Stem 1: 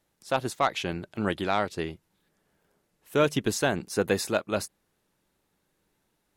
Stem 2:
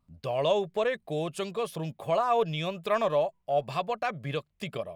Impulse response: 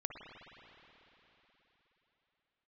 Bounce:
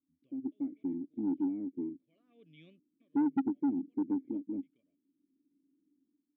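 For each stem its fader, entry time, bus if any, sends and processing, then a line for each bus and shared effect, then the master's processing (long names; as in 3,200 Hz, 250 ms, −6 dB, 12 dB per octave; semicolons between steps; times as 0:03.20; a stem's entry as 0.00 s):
−1.0 dB, 0.00 s, no send, automatic gain control gain up to 12.5 dB; formant resonators in series u
−11.0 dB, 0.00 s, no send, gate pattern "xxx..xxxxxxx" 145 BPM −60 dB; automatic ducking −22 dB, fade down 0.45 s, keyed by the first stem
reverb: not used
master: formant filter i; tilt shelving filter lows +5 dB; soft clipping −24 dBFS, distortion −10 dB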